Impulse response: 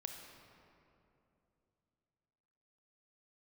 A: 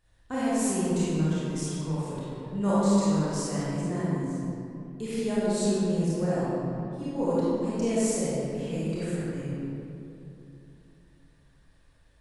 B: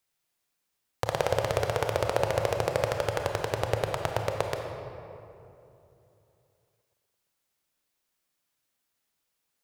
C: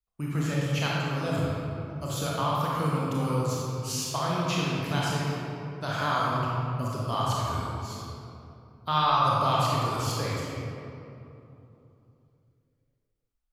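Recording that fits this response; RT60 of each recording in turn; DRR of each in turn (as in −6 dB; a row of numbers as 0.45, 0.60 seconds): B; 2.8, 2.9, 2.8 seconds; −10.5, 3.5, −5.5 decibels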